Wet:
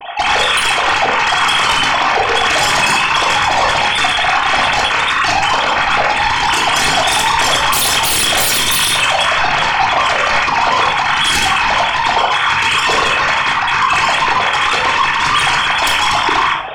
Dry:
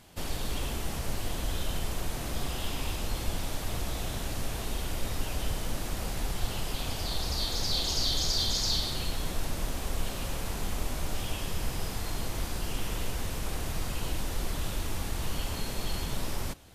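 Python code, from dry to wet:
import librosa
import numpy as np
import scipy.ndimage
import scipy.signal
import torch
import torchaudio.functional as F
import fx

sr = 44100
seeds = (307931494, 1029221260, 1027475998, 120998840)

y = fx.sine_speech(x, sr)
y = fx.notch(y, sr, hz=2900.0, q=12.0)
y = fx.fold_sine(y, sr, drive_db=17, ceiling_db=-11.0)
y = fx.room_shoebox(y, sr, seeds[0], volume_m3=940.0, walls='furnished', distance_m=3.4)
y = y * 10.0 ** (-3.0 / 20.0)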